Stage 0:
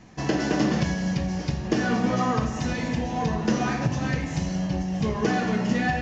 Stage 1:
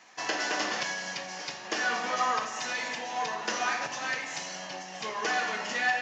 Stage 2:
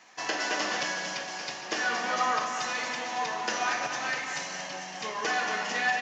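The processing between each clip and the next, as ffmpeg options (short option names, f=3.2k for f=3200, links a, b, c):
-af "highpass=910,volume=2.5dB"
-af "aecho=1:1:230|460|690|920|1150|1380|1610:0.398|0.231|0.134|0.0777|0.0451|0.0261|0.0152"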